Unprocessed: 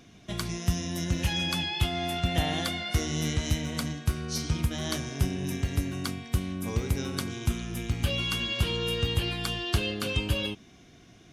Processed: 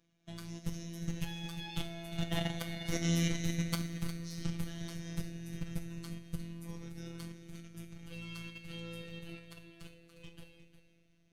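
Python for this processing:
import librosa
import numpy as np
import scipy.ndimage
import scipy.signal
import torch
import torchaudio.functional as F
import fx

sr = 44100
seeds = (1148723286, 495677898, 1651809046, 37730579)

y = np.minimum(x, 2.0 * 10.0 ** (-23.5 / 20.0) - x)
y = fx.doppler_pass(y, sr, speed_mps=8, closest_m=7.9, pass_at_s=3.22)
y = fx.low_shelf(y, sr, hz=120.0, db=6.0)
y = fx.level_steps(y, sr, step_db=15)
y = fx.rev_double_slope(y, sr, seeds[0], early_s=0.43, late_s=4.3, knee_db=-18, drr_db=5.5)
y = fx.robotise(y, sr, hz=168.0)
y = y + 10.0 ** (-11.5 / 20.0) * np.pad(y, (int(356 * sr / 1000.0), 0))[:len(y)]
y = y * 10.0 ** (1.0 / 20.0)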